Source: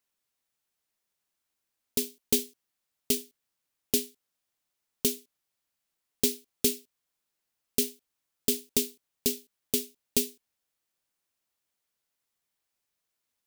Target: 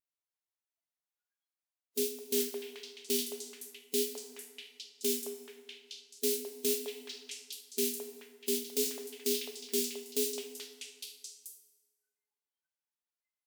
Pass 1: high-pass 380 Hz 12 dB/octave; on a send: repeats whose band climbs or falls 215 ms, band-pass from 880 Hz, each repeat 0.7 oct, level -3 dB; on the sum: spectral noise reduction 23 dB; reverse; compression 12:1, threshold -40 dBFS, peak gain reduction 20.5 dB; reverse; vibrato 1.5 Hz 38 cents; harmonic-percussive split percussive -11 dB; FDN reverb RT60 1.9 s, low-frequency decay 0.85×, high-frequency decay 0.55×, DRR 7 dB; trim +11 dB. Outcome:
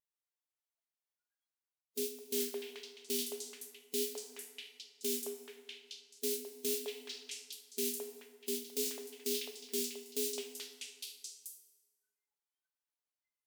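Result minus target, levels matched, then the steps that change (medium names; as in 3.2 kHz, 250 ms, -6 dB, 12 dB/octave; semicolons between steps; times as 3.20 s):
compression: peak gain reduction +5.5 dB
change: compression 12:1, threshold -34 dBFS, peak gain reduction 15 dB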